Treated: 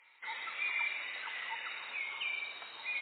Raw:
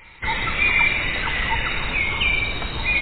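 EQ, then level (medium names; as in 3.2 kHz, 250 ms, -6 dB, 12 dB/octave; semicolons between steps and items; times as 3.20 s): band-pass filter 720 Hz, Q 0.69; differentiator; 0.0 dB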